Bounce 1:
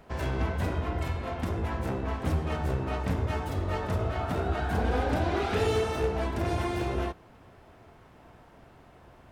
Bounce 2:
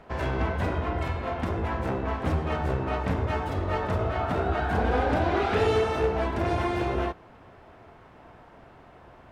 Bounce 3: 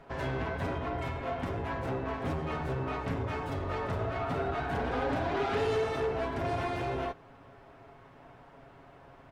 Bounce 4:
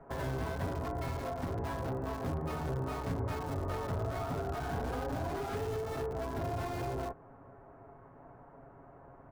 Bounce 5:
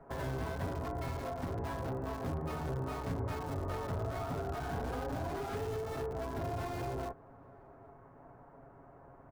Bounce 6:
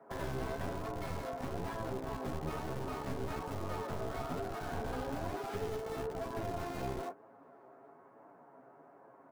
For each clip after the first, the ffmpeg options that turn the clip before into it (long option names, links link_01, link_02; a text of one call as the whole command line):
ffmpeg -i in.wav -af "lowpass=frequency=2200:poles=1,lowshelf=frequency=400:gain=-6,volume=6.5dB" out.wav
ffmpeg -i in.wav -af "asoftclip=type=tanh:threshold=-22dB,aecho=1:1:7.3:0.51,volume=-4dB" out.wav
ffmpeg -i in.wav -filter_complex "[0:a]acrossover=split=150[link_01][link_02];[link_02]acompressor=threshold=-34dB:ratio=8[link_03];[link_01][link_03]amix=inputs=2:normalize=0,acrossover=split=1600[link_04][link_05];[link_05]acrusher=bits=5:dc=4:mix=0:aa=0.000001[link_06];[link_04][link_06]amix=inputs=2:normalize=0" out.wav
ffmpeg -i in.wav -filter_complex "[0:a]asplit=2[link_01][link_02];[link_02]adelay=816.3,volume=-29dB,highshelf=frequency=4000:gain=-18.4[link_03];[link_01][link_03]amix=inputs=2:normalize=0,volume=-1.5dB" out.wav
ffmpeg -i in.wav -filter_complex "[0:a]acrossover=split=180|760|3800[link_01][link_02][link_03][link_04];[link_01]acrusher=bits=4:dc=4:mix=0:aa=0.000001[link_05];[link_05][link_02][link_03][link_04]amix=inputs=4:normalize=0,flanger=delay=9:depth=6.6:regen=40:speed=1.1:shape=sinusoidal,volume=3dB" out.wav